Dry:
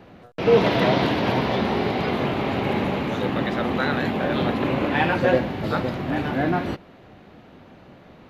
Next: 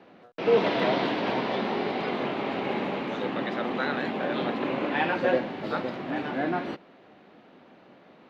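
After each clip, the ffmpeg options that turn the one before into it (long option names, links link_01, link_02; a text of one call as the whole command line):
ffmpeg -i in.wav -filter_complex "[0:a]acrossover=split=180 5900:gain=0.0794 1 0.2[link_01][link_02][link_03];[link_01][link_02][link_03]amix=inputs=3:normalize=0,volume=-4.5dB" out.wav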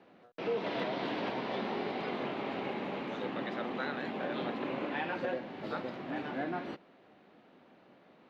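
ffmpeg -i in.wav -af "alimiter=limit=-17.5dB:level=0:latency=1:release=291,volume=-7dB" out.wav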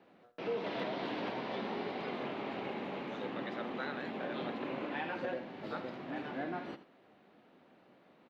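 ffmpeg -i in.wav -af "aecho=1:1:83:0.2,volume=-3dB" out.wav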